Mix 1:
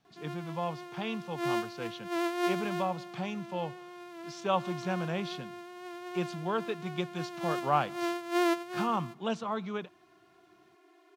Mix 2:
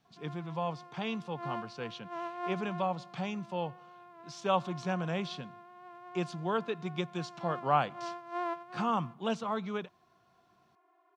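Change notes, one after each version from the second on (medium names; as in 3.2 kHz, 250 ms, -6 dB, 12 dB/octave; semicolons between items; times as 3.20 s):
background: add band-pass filter 920 Hz, Q 2.2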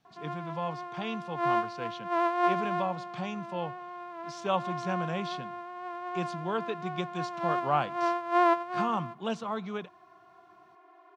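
background +12.0 dB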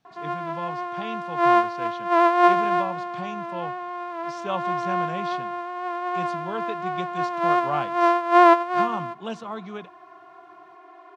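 background +9.5 dB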